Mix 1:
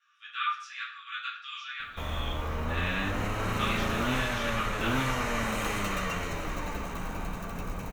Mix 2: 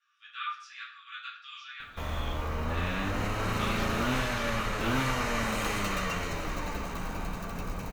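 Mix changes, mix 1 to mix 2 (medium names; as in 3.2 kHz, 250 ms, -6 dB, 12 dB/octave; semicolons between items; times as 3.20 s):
speech -5.5 dB; master: add peaking EQ 4.7 kHz +5.5 dB 0.38 oct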